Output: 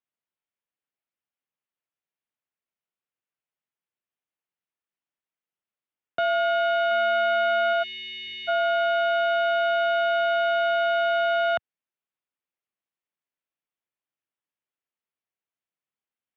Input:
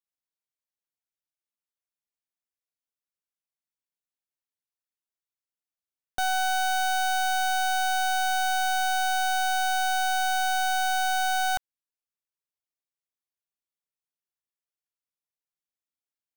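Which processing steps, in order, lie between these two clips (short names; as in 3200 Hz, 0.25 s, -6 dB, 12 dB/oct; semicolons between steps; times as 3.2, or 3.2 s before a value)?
mistuned SSB -72 Hz 170–3300 Hz; 6.91–7.73 small resonant body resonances 220/1300/2100 Hz, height 10 dB; 7.83–8.48 spectral delete 460–1600 Hz; gain +3.5 dB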